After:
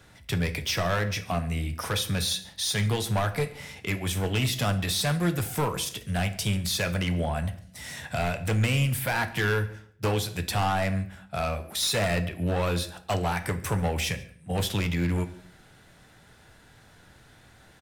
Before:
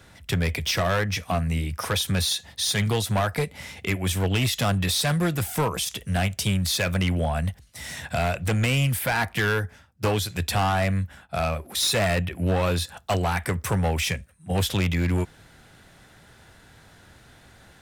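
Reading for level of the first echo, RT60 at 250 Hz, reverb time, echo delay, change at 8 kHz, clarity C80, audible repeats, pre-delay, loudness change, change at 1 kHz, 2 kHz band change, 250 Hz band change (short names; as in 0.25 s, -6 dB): -24.0 dB, 0.80 s, 0.60 s, 0.14 s, -3.0 dB, 17.0 dB, 1, 7 ms, -3.0 dB, -3.0 dB, -3.0 dB, -2.5 dB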